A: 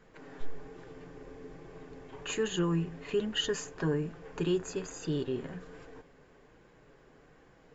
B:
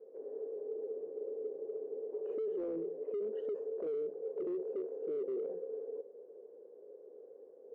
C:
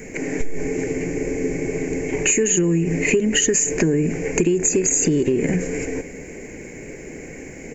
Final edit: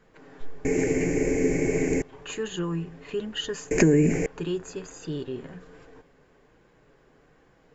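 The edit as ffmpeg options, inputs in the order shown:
-filter_complex "[2:a]asplit=2[s0][s1];[0:a]asplit=3[s2][s3][s4];[s2]atrim=end=0.652[s5];[s0]atrim=start=0.648:end=2.022[s6];[s3]atrim=start=2.018:end=3.712[s7];[s1]atrim=start=3.708:end=4.262[s8];[s4]atrim=start=4.258[s9];[s5][s6]acrossfade=d=0.004:c1=hsin:c2=hsin[s10];[s10][s7]acrossfade=d=0.004:c1=hsin:c2=hsin[s11];[s11][s8]acrossfade=d=0.004:c1=hsin:c2=hsin[s12];[s12][s9]acrossfade=d=0.004:c1=hsin:c2=hsin"

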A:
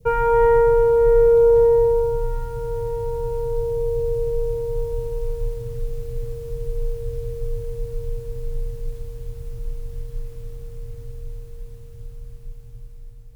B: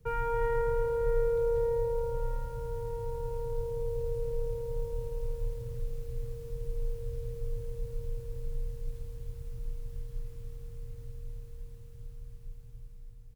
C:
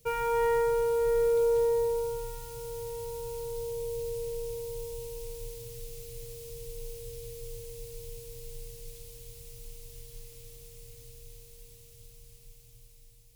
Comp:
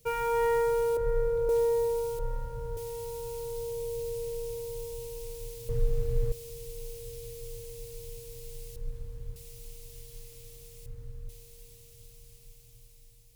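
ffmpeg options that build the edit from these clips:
-filter_complex "[1:a]asplit=4[s0][s1][s2][s3];[2:a]asplit=6[s4][s5][s6][s7][s8][s9];[s4]atrim=end=0.972[s10];[s0]atrim=start=0.968:end=1.492[s11];[s5]atrim=start=1.488:end=2.192[s12];[s1]atrim=start=2.188:end=2.772[s13];[s6]atrim=start=2.768:end=5.692[s14];[0:a]atrim=start=5.688:end=6.322[s15];[s7]atrim=start=6.318:end=8.762[s16];[s2]atrim=start=8.758:end=9.362[s17];[s8]atrim=start=9.358:end=10.862[s18];[s3]atrim=start=10.858:end=11.292[s19];[s9]atrim=start=11.288[s20];[s10][s11]acrossfade=d=0.004:c1=hsin:c2=hsin[s21];[s21][s12]acrossfade=d=0.004:c1=hsin:c2=hsin[s22];[s22][s13]acrossfade=d=0.004:c1=hsin:c2=hsin[s23];[s23][s14]acrossfade=d=0.004:c1=hsin:c2=hsin[s24];[s24][s15]acrossfade=d=0.004:c1=hsin:c2=hsin[s25];[s25][s16]acrossfade=d=0.004:c1=hsin:c2=hsin[s26];[s26][s17]acrossfade=d=0.004:c1=hsin:c2=hsin[s27];[s27][s18]acrossfade=d=0.004:c1=hsin:c2=hsin[s28];[s28][s19]acrossfade=d=0.004:c1=hsin:c2=hsin[s29];[s29][s20]acrossfade=d=0.004:c1=hsin:c2=hsin"

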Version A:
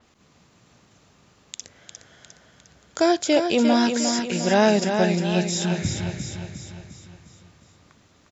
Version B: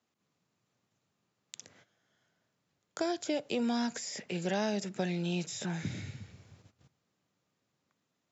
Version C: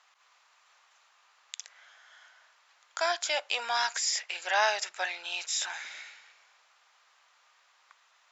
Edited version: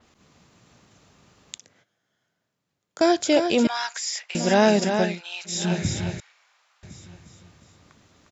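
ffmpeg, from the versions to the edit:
-filter_complex "[2:a]asplit=3[s0][s1][s2];[0:a]asplit=5[s3][s4][s5][s6][s7];[s3]atrim=end=1.582[s8];[1:a]atrim=start=1.578:end=3.012[s9];[s4]atrim=start=3.008:end=3.672[s10];[s0]atrim=start=3.668:end=4.352[s11];[s5]atrim=start=4.348:end=5.21[s12];[s1]atrim=start=4.97:end=5.68[s13];[s6]atrim=start=5.44:end=6.202[s14];[s2]atrim=start=6.198:end=6.832[s15];[s7]atrim=start=6.828[s16];[s8][s9]acrossfade=d=0.004:c1=hsin:c2=hsin[s17];[s17][s10]acrossfade=d=0.004:c1=hsin:c2=hsin[s18];[s18][s11]acrossfade=d=0.004:c1=hsin:c2=hsin[s19];[s19][s12]acrossfade=d=0.004:c1=hsin:c2=hsin[s20];[s20][s13]acrossfade=d=0.24:c1=tri:c2=tri[s21];[s21][s14]acrossfade=d=0.24:c1=tri:c2=tri[s22];[s22][s15]acrossfade=d=0.004:c1=hsin:c2=hsin[s23];[s23][s16]acrossfade=d=0.004:c1=hsin:c2=hsin"

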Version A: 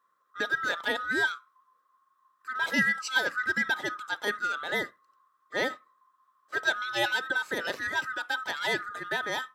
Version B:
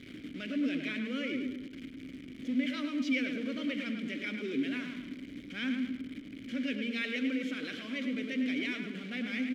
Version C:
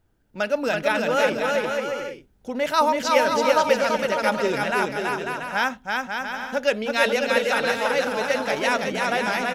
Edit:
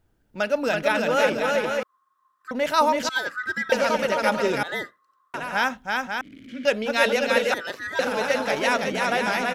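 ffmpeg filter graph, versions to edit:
-filter_complex "[0:a]asplit=4[s0][s1][s2][s3];[2:a]asplit=6[s4][s5][s6][s7][s8][s9];[s4]atrim=end=1.832[s10];[s0]atrim=start=1.828:end=2.512[s11];[s5]atrim=start=2.508:end=3.092[s12];[s1]atrim=start=3.088:end=3.722[s13];[s6]atrim=start=3.718:end=4.632[s14];[s2]atrim=start=4.628:end=5.342[s15];[s7]atrim=start=5.338:end=6.212[s16];[1:a]atrim=start=6.208:end=6.652[s17];[s8]atrim=start=6.648:end=7.542[s18];[s3]atrim=start=7.538:end=7.992[s19];[s9]atrim=start=7.988[s20];[s10][s11]acrossfade=d=0.004:c1=hsin:c2=hsin[s21];[s21][s12]acrossfade=d=0.004:c1=hsin:c2=hsin[s22];[s22][s13]acrossfade=d=0.004:c1=hsin:c2=hsin[s23];[s23][s14]acrossfade=d=0.004:c1=hsin:c2=hsin[s24];[s24][s15]acrossfade=d=0.004:c1=hsin:c2=hsin[s25];[s25][s16]acrossfade=d=0.004:c1=hsin:c2=hsin[s26];[s26][s17]acrossfade=d=0.004:c1=hsin:c2=hsin[s27];[s27][s18]acrossfade=d=0.004:c1=hsin:c2=hsin[s28];[s28][s19]acrossfade=d=0.004:c1=hsin:c2=hsin[s29];[s29][s20]acrossfade=d=0.004:c1=hsin:c2=hsin"

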